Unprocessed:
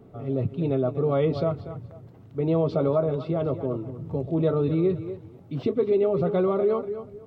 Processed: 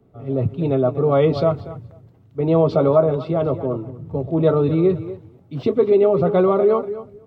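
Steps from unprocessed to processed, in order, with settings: dynamic EQ 900 Hz, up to +4 dB, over -40 dBFS, Q 1; three-band expander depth 40%; gain +5.5 dB

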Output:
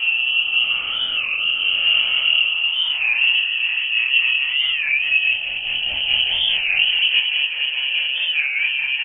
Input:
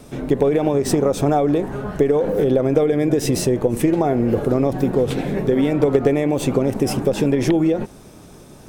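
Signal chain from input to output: spectral swells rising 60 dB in 0.50 s; limiter -11.5 dBFS, peak gain reduction 8.5 dB; Paulstretch 15×, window 0.10 s, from 0.78; vibrato 11 Hz 33 cents; chorus 1.1 Hz, delay 17 ms, depth 6.4 ms; rotary speaker horn 0.9 Hz, later 5 Hz, at 3.08; doubler 23 ms -4 dB; speed mistake 25 fps video run at 24 fps; inverted band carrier 3100 Hz; record warp 33 1/3 rpm, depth 160 cents; gain +3.5 dB

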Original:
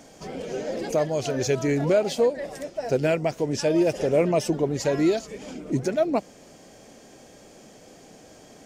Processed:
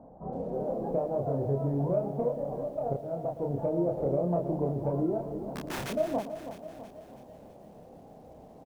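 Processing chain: steep low-pass 960 Hz 36 dB/oct; bell 350 Hz -7 dB 1 oct; 2.85–3.51 auto swell 0.682 s; compressor 6:1, threshold -28 dBFS, peak gain reduction 9.5 dB; 5.5–5.9 wrapped overs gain 32.5 dB; added harmonics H 4 -34 dB, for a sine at -19.5 dBFS; doubler 29 ms -2.5 dB; feedback echo 0.115 s, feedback 22%, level -14 dB; lo-fi delay 0.326 s, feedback 55%, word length 10-bit, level -10.5 dB

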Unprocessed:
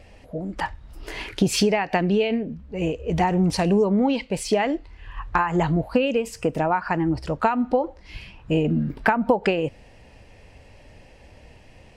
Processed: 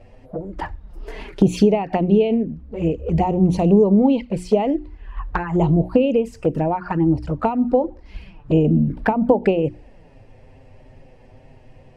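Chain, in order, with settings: tilt shelf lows +7 dB, about 1400 Hz; envelope flanger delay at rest 9.5 ms, full sweep at -13 dBFS; notches 60/120/180/240/300/360 Hz

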